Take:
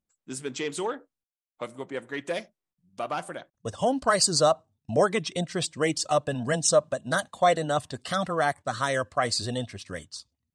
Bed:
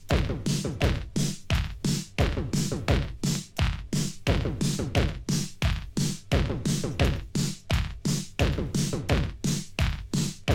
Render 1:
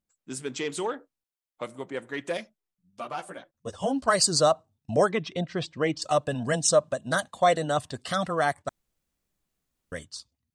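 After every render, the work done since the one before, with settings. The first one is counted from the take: 2.37–4.08 s: three-phase chorus; 5.11–6.02 s: distance through air 170 m; 8.69–9.92 s: room tone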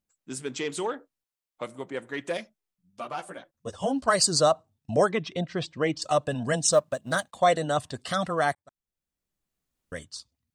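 6.72–7.35 s: companding laws mixed up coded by A; 8.55–10.06 s: fade in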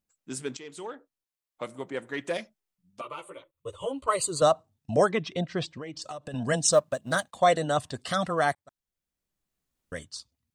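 0.57–1.75 s: fade in, from -15 dB; 3.01–4.42 s: static phaser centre 1.1 kHz, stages 8; 5.71–6.34 s: compression 16:1, threshold -34 dBFS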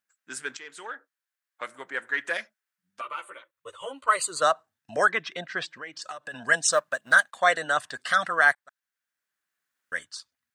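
high-pass 900 Hz 6 dB/octave; peaking EQ 1.6 kHz +14.5 dB 0.75 oct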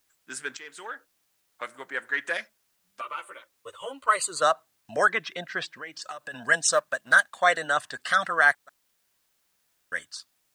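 word length cut 12-bit, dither triangular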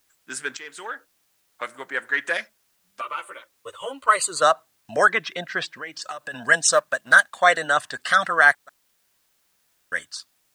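trim +4.5 dB

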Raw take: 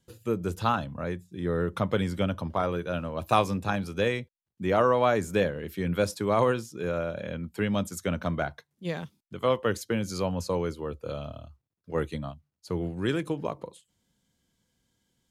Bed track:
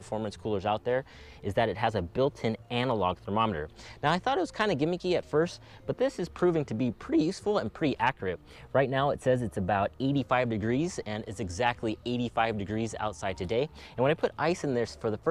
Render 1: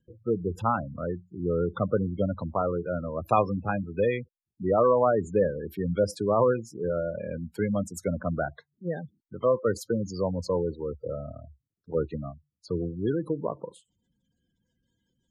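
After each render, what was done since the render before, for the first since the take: spectral gate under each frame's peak -15 dB strong; dynamic bell 480 Hz, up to +3 dB, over -39 dBFS, Q 2.1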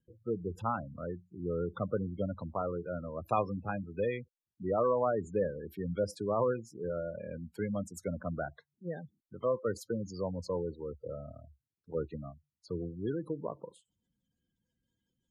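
trim -7.5 dB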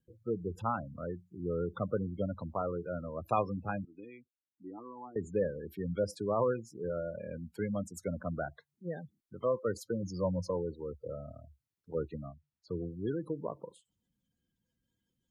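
3.85–5.16 s: vowel filter u; 10.02–10.51 s: rippled EQ curve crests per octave 1.2, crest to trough 12 dB; 12.27–12.88 s: distance through air 120 m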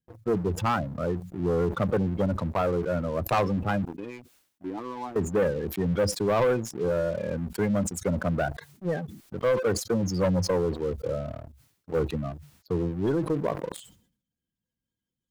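waveshaping leveller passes 3; decay stretcher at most 99 dB/s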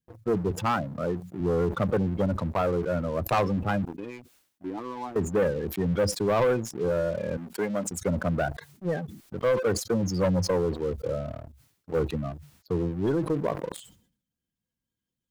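0.51–1.41 s: high-pass 110 Hz; 7.37–7.88 s: high-pass 270 Hz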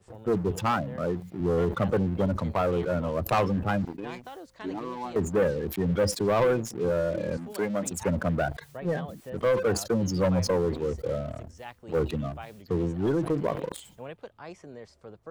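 add bed track -15.5 dB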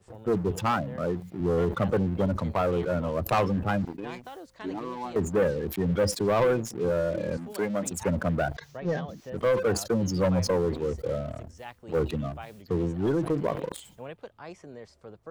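8.54–9.30 s: resonant high shelf 7.3 kHz -7 dB, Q 3

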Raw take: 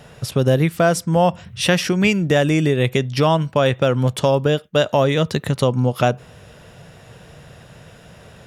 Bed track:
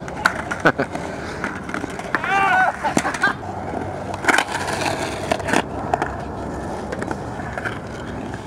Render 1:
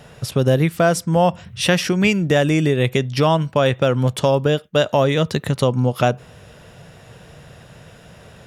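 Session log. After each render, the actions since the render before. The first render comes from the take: no audible change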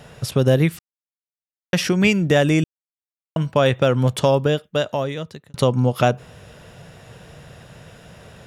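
0.79–1.73 s: mute; 2.64–3.36 s: mute; 4.31–5.54 s: fade out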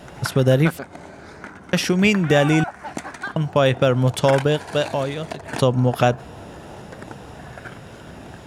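add bed track -12 dB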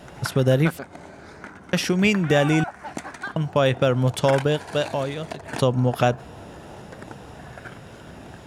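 trim -2.5 dB

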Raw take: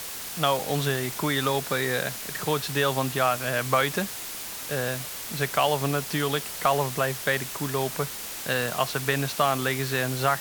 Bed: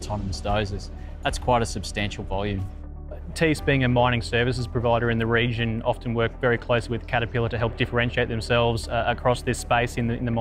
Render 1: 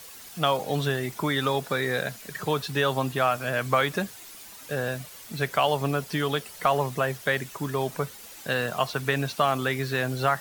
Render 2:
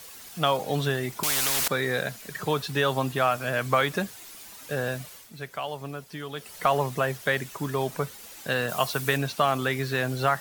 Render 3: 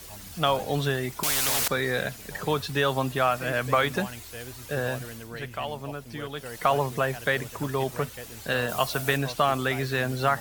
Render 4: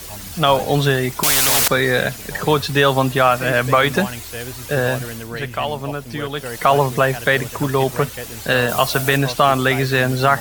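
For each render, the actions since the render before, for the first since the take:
noise reduction 11 dB, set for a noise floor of -36 dBFS
1.23–1.68 s: spectrum-flattening compressor 10:1; 5.11–6.54 s: dip -10 dB, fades 0.20 s; 8.69–9.17 s: treble shelf 6.4 kHz +10 dB
add bed -18.5 dB
trim +10 dB; peak limiter -2 dBFS, peak gain reduction 3 dB

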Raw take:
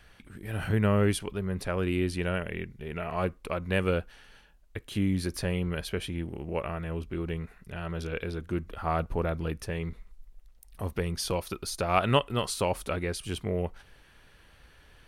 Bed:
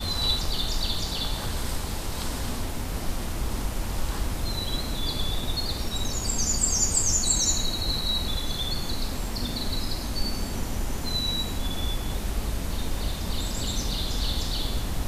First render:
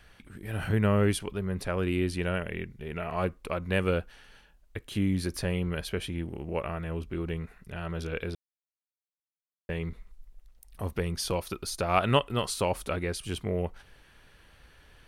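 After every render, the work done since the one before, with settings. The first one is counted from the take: 8.35–9.69 s: mute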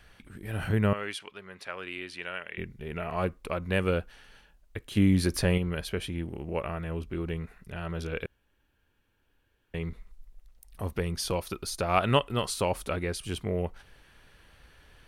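0.93–2.58 s: band-pass filter 2.4 kHz, Q 0.69; 4.97–5.58 s: gain +5 dB; 8.26–9.74 s: room tone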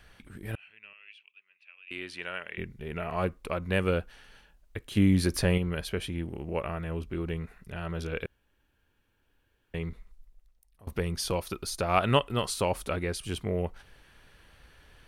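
0.55–1.91 s: band-pass filter 2.6 kHz, Q 15; 9.77–10.87 s: fade out, to -24 dB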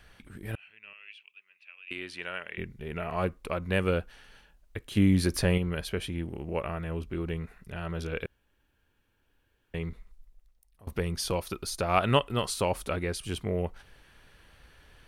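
0.87–1.93 s: gain +3 dB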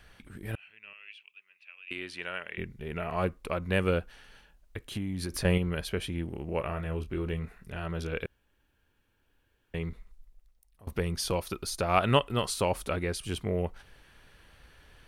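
3.99–5.45 s: compression, threshold -30 dBFS; 6.56–7.85 s: doubling 26 ms -10 dB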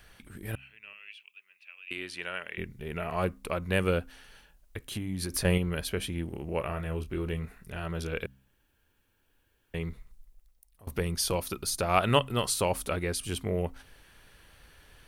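treble shelf 7.2 kHz +9 dB; de-hum 65.84 Hz, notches 4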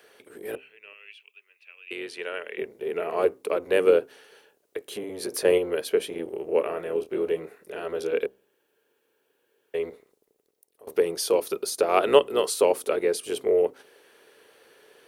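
octave divider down 1 oct, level +2 dB; resonant high-pass 430 Hz, resonance Q 4.9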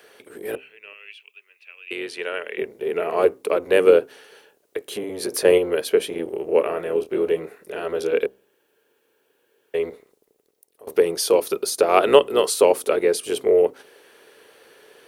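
trim +5 dB; peak limiter -1 dBFS, peak gain reduction 2 dB

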